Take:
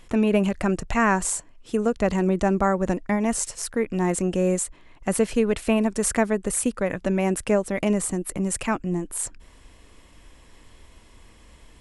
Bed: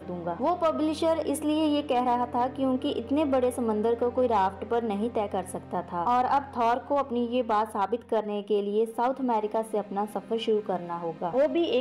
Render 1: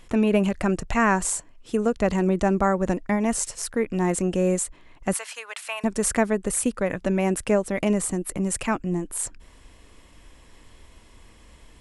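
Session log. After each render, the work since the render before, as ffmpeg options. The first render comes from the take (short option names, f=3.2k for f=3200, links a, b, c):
-filter_complex "[0:a]asettb=1/sr,asplit=3[a][b][c];[a]atrim=end=5.134[d];[b]atrim=start=5.13:end=5.84,asetpts=PTS-STARTPTS,afade=t=in:d=0.004:c=qsin,afade=t=out:st=0.706:d=0.004:c=qsin,highpass=f=870:w=0.5412,highpass=f=870:w=1.3066[e];[c]atrim=start=5.836[f];[d][e]acrossfade=d=0.004:c1=hsin:c2=qsin[g];[g][f]acrossfade=d=0.004:c1=qsin:c2=hsin"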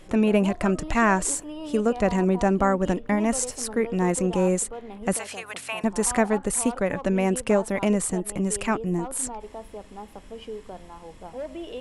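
-filter_complex "[1:a]volume=-11dB[a];[0:a][a]amix=inputs=2:normalize=0"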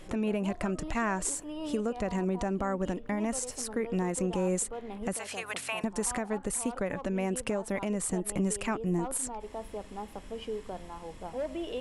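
-af "acompressor=threshold=-23dB:ratio=2.5,alimiter=limit=-20dB:level=0:latency=1:release=416"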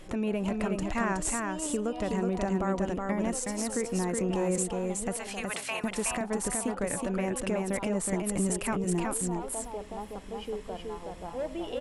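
-af "aecho=1:1:370:0.668"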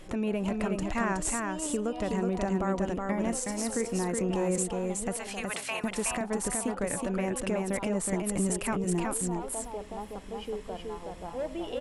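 -filter_complex "[0:a]asettb=1/sr,asplit=3[a][b][c];[a]atrim=end=3.104[d];[b]atrim=start=3.1:end=4.08,asetpts=PTS-STARTPTS,afade=t=in:d=0.004:c=qsin,afade=t=out:st=0.976:d=0.004:c=qsin,asplit=2[e][f];[f]adelay=35,volume=-13dB[g];[e][g]amix=inputs=2:normalize=0,atrim=end_sample=43218[h];[c]atrim=start=4.076[i];[d][h]acrossfade=d=0.004:c1=hsin:c2=qsin[j];[j][i]acrossfade=d=0.004:c1=qsin:c2=hsin"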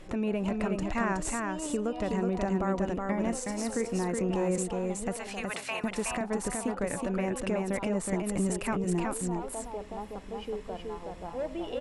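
-af "highshelf=f=9.2k:g=-11,bandreject=f=3.2k:w=21"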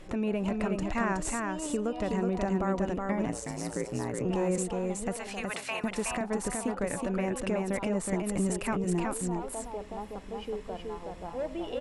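-filter_complex "[0:a]asettb=1/sr,asplit=3[a][b][c];[a]atrim=end=3.254[d];[b]atrim=start=3.25:end=4.25,asetpts=PTS-STARTPTS,afade=t=in:d=0.004:c=qsin,afade=t=out:st=0.996:d=0.004:c=qsin,aeval=exprs='val(0)*sin(2*PI*57*n/s)':c=same[e];[c]atrim=start=4.246[f];[d][e]acrossfade=d=0.004:c1=hsin:c2=qsin[g];[g][f]acrossfade=d=0.004:c1=qsin:c2=hsin"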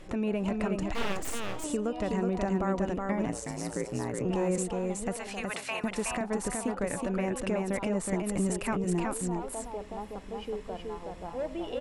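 -filter_complex "[0:a]asettb=1/sr,asplit=3[a][b][c];[a]atrim=end=0.944[d];[b]atrim=start=0.94:end=1.64,asetpts=PTS-STARTPTS,afade=t=in:d=0.004:c=qsin,afade=t=out:st=0.696:d=0.004:c=qsin,aeval=exprs='abs(val(0))':c=same[e];[c]atrim=start=1.636[f];[d][e]acrossfade=d=0.004:c1=hsin:c2=qsin[g];[g][f]acrossfade=d=0.004:c1=qsin:c2=hsin"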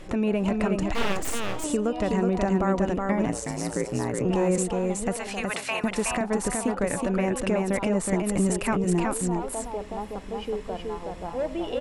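-af "volume=5.5dB"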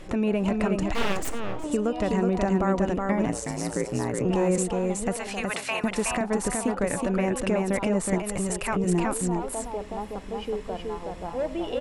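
-filter_complex "[0:a]asplit=3[a][b][c];[a]afade=t=out:st=1.28:d=0.02[d];[b]lowpass=f=1.3k:p=1,afade=t=in:st=1.28:d=0.02,afade=t=out:st=1.71:d=0.02[e];[c]afade=t=in:st=1.71:d=0.02[f];[d][e][f]amix=inputs=3:normalize=0,asettb=1/sr,asplit=3[g][h][i];[g]atrim=end=8.184[j];[h]atrim=start=8.18:end=8.76,asetpts=PTS-STARTPTS,afade=t=in:d=0.004:c=qsin,afade=t=out:st=0.576:d=0.004:c=qsin,equalizer=f=260:w=1.5:g=-11.5[k];[i]atrim=start=8.756[l];[j][k]acrossfade=d=0.004:c1=hsin:c2=qsin[m];[m][l]acrossfade=d=0.004:c1=qsin:c2=hsin"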